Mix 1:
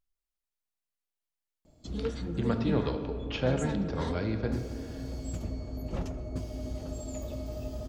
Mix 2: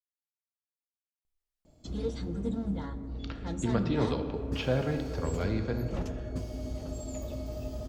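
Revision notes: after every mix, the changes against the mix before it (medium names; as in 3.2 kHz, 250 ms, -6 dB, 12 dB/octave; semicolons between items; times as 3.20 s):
speech: entry +1.25 s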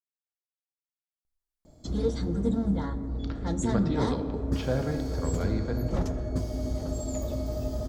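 background +6.0 dB; master: add peaking EQ 2.7 kHz -9.5 dB 0.47 oct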